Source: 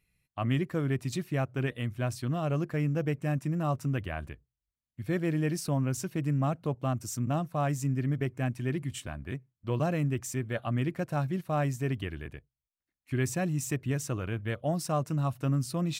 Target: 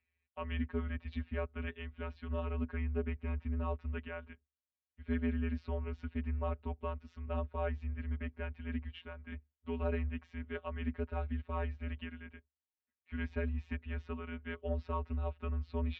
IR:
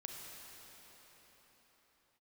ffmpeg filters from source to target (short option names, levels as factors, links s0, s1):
-af "afftfilt=real='hypot(re,im)*cos(PI*b)':imag='0':win_size=1024:overlap=0.75,highpass=f=160:t=q:w=0.5412,highpass=f=160:t=q:w=1.307,lowpass=f=3400:t=q:w=0.5176,lowpass=f=3400:t=q:w=0.7071,lowpass=f=3400:t=q:w=1.932,afreqshift=-99,volume=0.75"